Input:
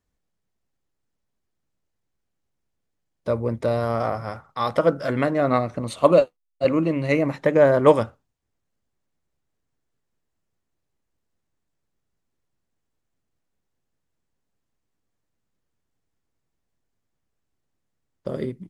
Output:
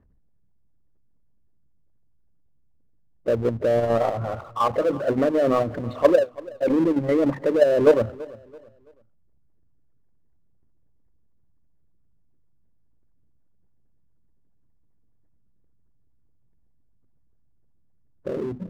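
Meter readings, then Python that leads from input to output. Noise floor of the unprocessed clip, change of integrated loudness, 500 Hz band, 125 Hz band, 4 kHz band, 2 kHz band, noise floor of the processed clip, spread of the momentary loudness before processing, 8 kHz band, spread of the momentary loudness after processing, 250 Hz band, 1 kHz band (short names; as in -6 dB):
-78 dBFS, -0.5 dB, 0.0 dB, -3.5 dB, -2.5 dB, -4.0 dB, -60 dBFS, 14 LU, n/a, 12 LU, +0.5 dB, -2.0 dB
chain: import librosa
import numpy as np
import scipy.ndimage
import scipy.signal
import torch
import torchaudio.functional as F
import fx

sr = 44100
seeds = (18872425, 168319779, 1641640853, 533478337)

p1 = fx.envelope_sharpen(x, sr, power=2.0)
p2 = scipy.signal.sosfilt(scipy.signal.butter(4, 2000.0, 'lowpass', fs=sr, output='sos'), p1)
p3 = fx.level_steps(p2, sr, step_db=12)
p4 = fx.power_curve(p3, sr, exponent=0.7)
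p5 = fx.hum_notches(p4, sr, base_hz=50, count=5)
y = p5 + fx.echo_feedback(p5, sr, ms=333, feedback_pct=34, wet_db=-20.5, dry=0)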